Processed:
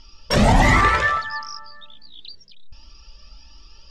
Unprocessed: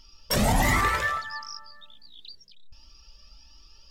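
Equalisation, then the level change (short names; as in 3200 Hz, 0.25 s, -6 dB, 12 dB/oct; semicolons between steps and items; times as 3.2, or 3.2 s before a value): air absorption 91 m; +8.0 dB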